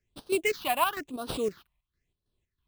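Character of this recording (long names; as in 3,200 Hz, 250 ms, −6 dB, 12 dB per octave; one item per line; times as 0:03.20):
chopped level 3.1 Hz, depth 60%, duty 60%
aliases and images of a low sample rate 11,000 Hz, jitter 20%
phaser sweep stages 6, 1 Hz, lowest notch 410–2,100 Hz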